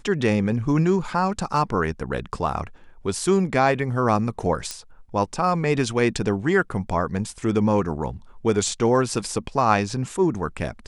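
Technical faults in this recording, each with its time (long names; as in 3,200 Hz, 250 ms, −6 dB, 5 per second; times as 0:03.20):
0:04.71: click −14 dBFS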